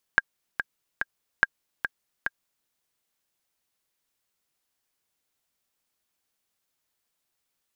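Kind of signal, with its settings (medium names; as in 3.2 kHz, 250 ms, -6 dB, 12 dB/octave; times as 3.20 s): metronome 144 bpm, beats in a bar 3, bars 2, 1.61 kHz, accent 8.5 dB -4.5 dBFS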